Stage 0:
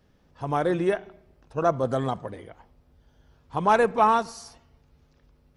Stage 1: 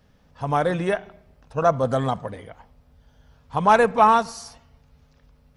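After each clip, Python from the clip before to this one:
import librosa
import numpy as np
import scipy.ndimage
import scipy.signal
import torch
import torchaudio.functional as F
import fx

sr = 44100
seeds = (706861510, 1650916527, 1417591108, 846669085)

y = fx.peak_eq(x, sr, hz=350.0, db=-11.0, octaves=0.34)
y = y * 10.0 ** (4.5 / 20.0)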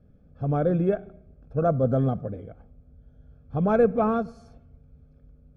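y = np.convolve(x, np.full(46, 1.0 / 46))[:len(x)]
y = y * 10.0 ** (3.5 / 20.0)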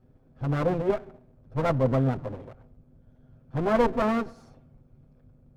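y = fx.lower_of_two(x, sr, delay_ms=7.8)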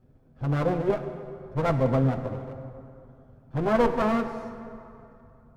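y = fx.rev_plate(x, sr, seeds[0], rt60_s=2.7, hf_ratio=0.6, predelay_ms=0, drr_db=8.0)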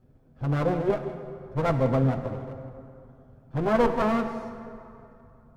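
y = x + 10.0 ** (-16.5 / 20.0) * np.pad(x, (int(165 * sr / 1000.0), 0))[:len(x)]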